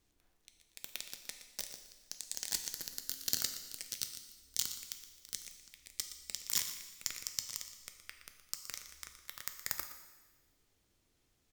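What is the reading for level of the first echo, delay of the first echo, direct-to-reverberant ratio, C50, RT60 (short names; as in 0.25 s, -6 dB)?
-13.0 dB, 0.119 s, 5.5 dB, 7.5 dB, 1.3 s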